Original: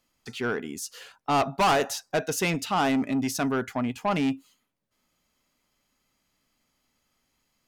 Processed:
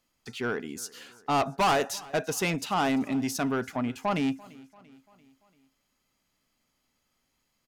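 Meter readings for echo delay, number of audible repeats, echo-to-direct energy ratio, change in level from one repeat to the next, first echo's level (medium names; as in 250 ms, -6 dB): 341 ms, 3, -21.5 dB, -5.5 dB, -23.0 dB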